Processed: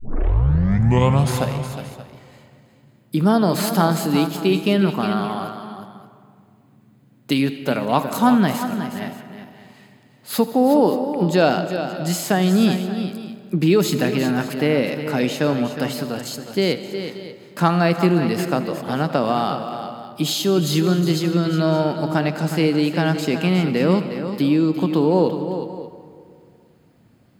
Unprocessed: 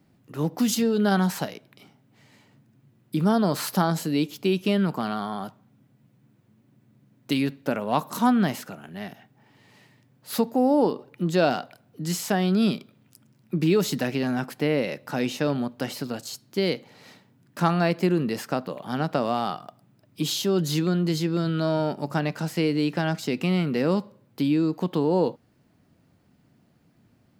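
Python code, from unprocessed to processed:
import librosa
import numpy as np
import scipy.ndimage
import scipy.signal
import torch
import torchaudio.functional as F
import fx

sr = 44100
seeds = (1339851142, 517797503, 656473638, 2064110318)

y = fx.tape_start_head(x, sr, length_s=1.57)
y = fx.notch(y, sr, hz=5700.0, q=9.4)
y = fx.echo_multitap(y, sr, ms=(81, 363, 577), db=(-17.5, -10.0, -17.0))
y = fx.rev_freeverb(y, sr, rt60_s=2.3, hf_ratio=0.5, predelay_ms=105, drr_db=12.5)
y = y * 10.0 ** (5.0 / 20.0)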